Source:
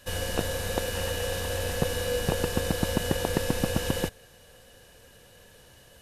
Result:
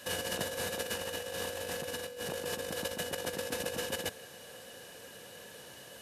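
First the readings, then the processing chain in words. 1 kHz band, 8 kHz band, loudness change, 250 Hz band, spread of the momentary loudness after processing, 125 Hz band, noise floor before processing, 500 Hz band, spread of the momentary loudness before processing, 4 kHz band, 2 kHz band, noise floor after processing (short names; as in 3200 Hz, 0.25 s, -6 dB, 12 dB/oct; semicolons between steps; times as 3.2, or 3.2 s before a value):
-7.0 dB, -4.5 dB, -7.5 dB, -13.0 dB, 13 LU, -17.0 dB, -55 dBFS, -7.5 dB, 2 LU, -4.5 dB, -4.5 dB, -51 dBFS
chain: limiter -19 dBFS, peak gain reduction 9 dB; HPF 180 Hz 12 dB/oct; negative-ratio compressor -36 dBFS, ratio -0.5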